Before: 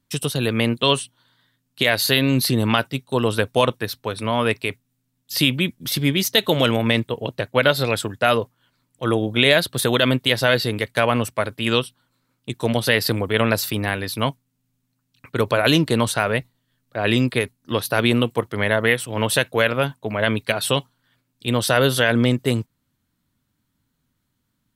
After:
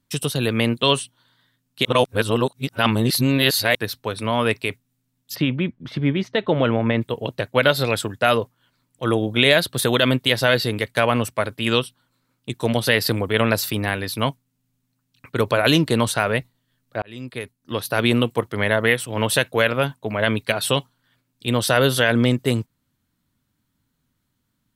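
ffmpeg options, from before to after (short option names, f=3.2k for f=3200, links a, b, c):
-filter_complex "[0:a]asplit=3[a][b][c];[a]afade=t=out:st=5.34:d=0.02[d];[b]lowpass=1.8k,afade=t=in:st=5.34:d=0.02,afade=t=out:st=7:d=0.02[e];[c]afade=t=in:st=7:d=0.02[f];[d][e][f]amix=inputs=3:normalize=0,asplit=4[g][h][i][j];[g]atrim=end=1.852[k];[h]atrim=start=1.848:end=3.752,asetpts=PTS-STARTPTS,areverse[l];[i]atrim=start=3.748:end=17.02,asetpts=PTS-STARTPTS,afade=t=out:st=13.268:d=0.004:c=hsin[m];[j]atrim=start=17.02,asetpts=PTS-STARTPTS,afade=t=in:d=1.1[n];[k][l]acrossfade=d=0.004:c1=hsin:c2=hsin[o];[m][n]concat=n=2:v=0:a=1[p];[o][p]acrossfade=d=0.004:c1=hsin:c2=hsin"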